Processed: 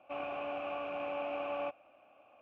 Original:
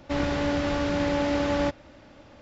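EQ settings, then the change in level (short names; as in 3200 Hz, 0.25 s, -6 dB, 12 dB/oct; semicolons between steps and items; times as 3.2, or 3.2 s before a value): vowel filter a; resonant high shelf 3400 Hz -7.5 dB, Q 3; 0.0 dB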